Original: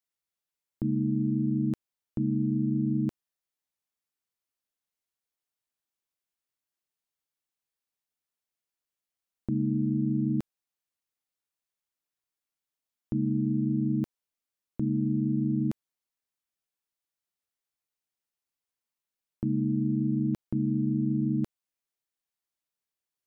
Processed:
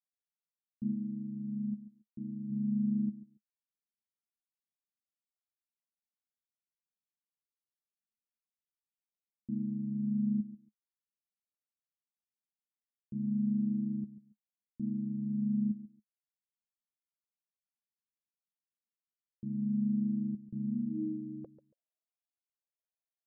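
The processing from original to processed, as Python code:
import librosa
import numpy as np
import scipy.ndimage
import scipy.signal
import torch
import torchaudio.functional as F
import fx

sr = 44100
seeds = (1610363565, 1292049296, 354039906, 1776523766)

y = fx.env_lowpass(x, sr, base_hz=420.0, full_db=-28.0)
y = fx.low_shelf(y, sr, hz=320.0, db=-5.5, at=(0.93, 2.5))
y = fx.filter_sweep_lowpass(y, sr, from_hz=210.0, to_hz=680.0, start_s=20.66, end_s=21.63, q=6.8)
y = fx.tilt_eq(y, sr, slope=2.5)
y = fx.echo_feedback(y, sr, ms=140, feedback_pct=18, wet_db=-14.5)
y = fx.comb_cascade(y, sr, direction='rising', hz=0.94)
y = y * librosa.db_to_amplitude(-6.5)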